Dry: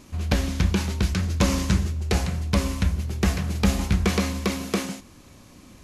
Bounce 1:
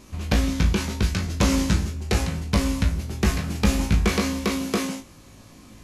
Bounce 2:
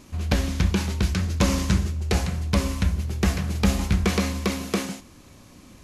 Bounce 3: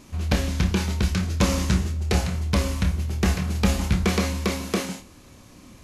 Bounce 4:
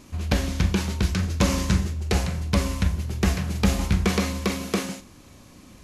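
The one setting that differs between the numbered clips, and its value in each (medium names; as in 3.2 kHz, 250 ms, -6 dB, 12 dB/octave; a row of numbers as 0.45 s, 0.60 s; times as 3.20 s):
flutter echo, walls apart: 3.2 m, 11.3 m, 4.7 m, 7.3 m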